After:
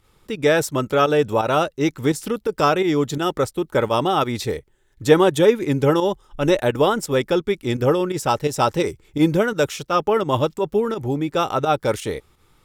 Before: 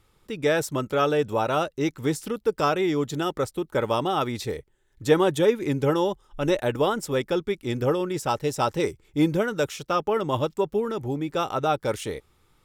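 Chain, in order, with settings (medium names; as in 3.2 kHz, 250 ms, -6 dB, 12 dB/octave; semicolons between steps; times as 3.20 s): volume shaper 85 bpm, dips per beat 2, -9 dB, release 93 ms; trim +5.5 dB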